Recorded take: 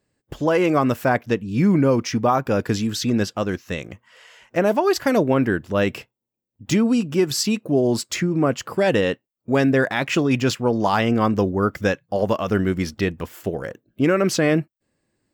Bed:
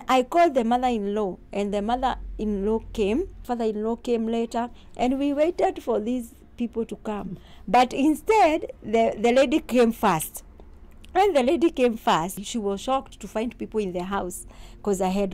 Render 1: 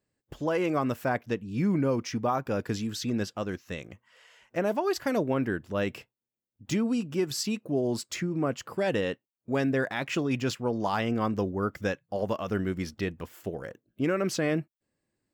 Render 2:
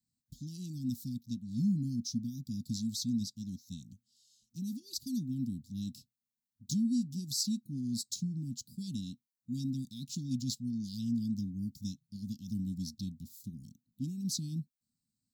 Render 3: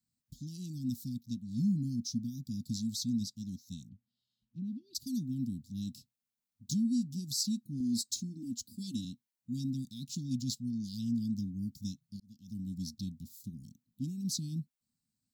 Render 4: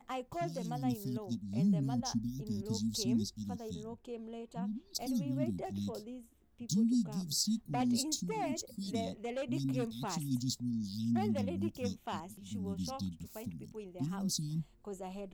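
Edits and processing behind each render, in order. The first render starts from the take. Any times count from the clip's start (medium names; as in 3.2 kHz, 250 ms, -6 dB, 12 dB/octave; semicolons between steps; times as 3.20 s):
trim -9 dB
Chebyshev band-stop 250–3900 Hz, order 5; bass shelf 100 Hz -10.5 dB
3.89–4.95 s: distance through air 490 m; 7.80–9.05 s: comb 3.4 ms, depth 90%; 12.20–12.86 s: fade in
add bed -20 dB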